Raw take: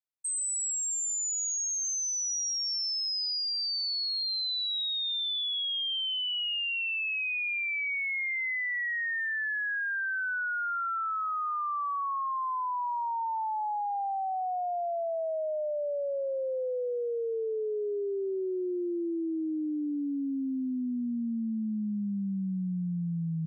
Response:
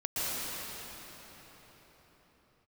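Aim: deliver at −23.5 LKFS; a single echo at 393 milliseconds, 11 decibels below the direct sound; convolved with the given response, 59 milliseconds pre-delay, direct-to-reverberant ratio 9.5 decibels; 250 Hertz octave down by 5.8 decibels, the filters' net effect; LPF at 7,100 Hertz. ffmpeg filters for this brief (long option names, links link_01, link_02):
-filter_complex "[0:a]lowpass=7100,equalizer=frequency=250:width_type=o:gain=-8,aecho=1:1:393:0.282,asplit=2[link_01][link_02];[1:a]atrim=start_sample=2205,adelay=59[link_03];[link_02][link_03]afir=irnorm=-1:irlink=0,volume=-18.5dB[link_04];[link_01][link_04]amix=inputs=2:normalize=0,volume=7dB"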